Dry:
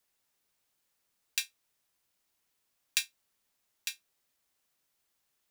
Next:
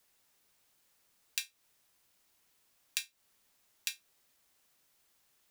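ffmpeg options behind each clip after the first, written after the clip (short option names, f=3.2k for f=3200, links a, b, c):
-af "acompressor=threshold=-39dB:ratio=5,volume=6.5dB"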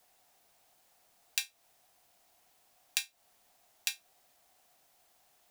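-af "equalizer=f=720:t=o:w=0.46:g=15,volume=3dB"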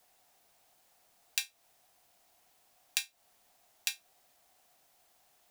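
-af anull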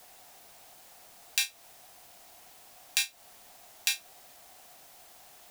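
-af "alimiter=level_in=15dB:limit=-1dB:release=50:level=0:latency=1,volume=-1dB"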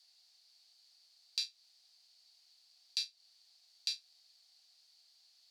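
-af "bandpass=f=4.5k:t=q:w=9.4:csg=0,volume=3dB"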